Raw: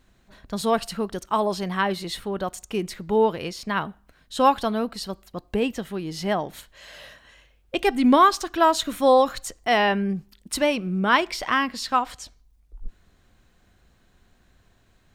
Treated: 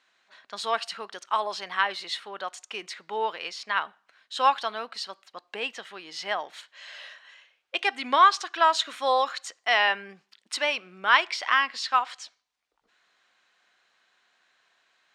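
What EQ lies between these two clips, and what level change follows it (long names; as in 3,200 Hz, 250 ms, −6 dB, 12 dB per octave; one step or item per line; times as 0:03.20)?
Bessel high-pass filter 1,400 Hz, order 2
high-frequency loss of the air 110 metres
+4.5 dB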